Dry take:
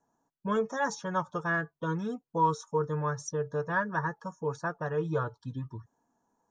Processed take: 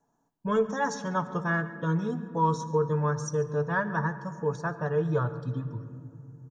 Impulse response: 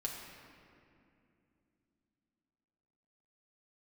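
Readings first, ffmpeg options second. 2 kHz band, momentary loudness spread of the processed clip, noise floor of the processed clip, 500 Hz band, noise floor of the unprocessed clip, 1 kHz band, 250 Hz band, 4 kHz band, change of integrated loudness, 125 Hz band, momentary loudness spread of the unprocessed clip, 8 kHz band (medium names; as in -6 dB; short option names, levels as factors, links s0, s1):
+1.0 dB, 11 LU, -74 dBFS, +3.5 dB, -85 dBFS, +1.0 dB, +4.5 dB, +1.0 dB, +3.0 dB, +6.0 dB, 9 LU, +1.0 dB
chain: -filter_complex "[0:a]asplit=2[s0][s1];[s1]adelay=139.9,volume=0.126,highshelf=f=4000:g=-3.15[s2];[s0][s2]amix=inputs=2:normalize=0,asplit=2[s3][s4];[1:a]atrim=start_sample=2205,lowshelf=f=280:g=12[s5];[s4][s5]afir=irnorm=-1:irlink=0,volume=0.355[s6];[s3][s6]amix=inputs=2:normalize=0,volume=0.891"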